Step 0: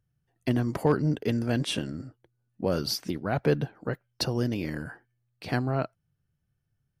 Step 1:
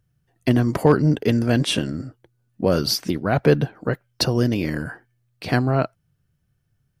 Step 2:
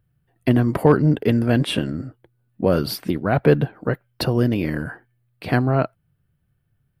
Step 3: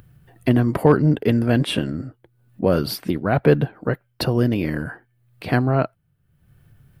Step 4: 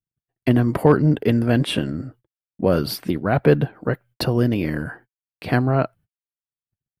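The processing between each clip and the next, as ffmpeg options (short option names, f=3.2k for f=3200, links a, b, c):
-af "bandreject=f=840:w=21,volume=8dB"
-af "equalizer=f=6.1k:t=o:w=0.84:g=-15,volume=1dB"
-af "acompressor=mode=upward:threshold=-37dB:ratio=2.5"
-af "agate=range=-58dB:threshold=-45dB:ratio=16:detection=peak"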